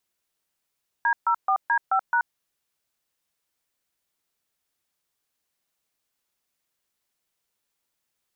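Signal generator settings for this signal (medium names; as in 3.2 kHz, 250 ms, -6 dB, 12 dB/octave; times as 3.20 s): DTMF "D04D5#", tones 80 ms, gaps 136 ms, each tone -21 dBFS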